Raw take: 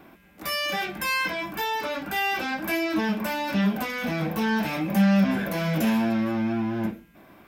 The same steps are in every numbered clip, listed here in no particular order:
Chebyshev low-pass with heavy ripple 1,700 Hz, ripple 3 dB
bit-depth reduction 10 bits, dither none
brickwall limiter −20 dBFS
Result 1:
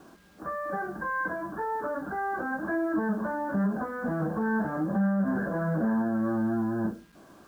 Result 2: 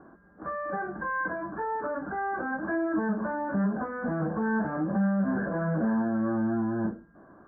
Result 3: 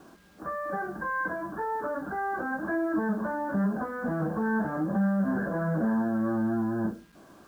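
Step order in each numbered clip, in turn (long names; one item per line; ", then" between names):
Chebyshev low-pass with heavy ripple, then bit-depth reduction, then brickwall limiter
bit-depth reduction, then Chebyshev low-pass with heavy ripple, then brickwall limiter
Chebyshev low-pass with heavy ripple, then brickwall limiter, then bit-depth reduction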